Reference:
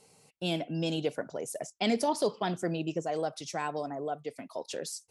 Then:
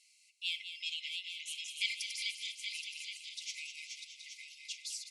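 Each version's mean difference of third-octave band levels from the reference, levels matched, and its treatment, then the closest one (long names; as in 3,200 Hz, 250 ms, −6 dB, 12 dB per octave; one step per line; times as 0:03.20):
23.0 dB: feedback delay that plays each chunk backwards 412 ms, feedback 63%, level −5 dB
linear-phase brick-wall high-pass 2,000 Hz
high-frequency loss of the air 52 metres
on a send: repeating echo 203 ms, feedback 59%, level −9.5 dB
on the sum: level +1.5 dB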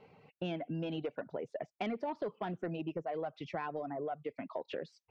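6.0 dB: low-pass filter 2,700 Hz 24 dB per octave
soft clipping −21.5 dBFS, distortion −19 dB
reverb reduction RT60 0.5 s
downward compressor 4 to 1, threshold −41 dBFS, peak gain reduction 12.5 dB
level +4.5 dB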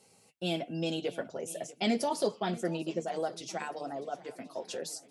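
3.5 dB: high-pass filter 75 Hz
notch filter 1,000 Hz, Q 15
notch comb filter 150 Hz
on a send: feedback echo with a long and a short gap by turns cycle 1,073 ms, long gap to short 1.5 to 1, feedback 33%, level −19 dB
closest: third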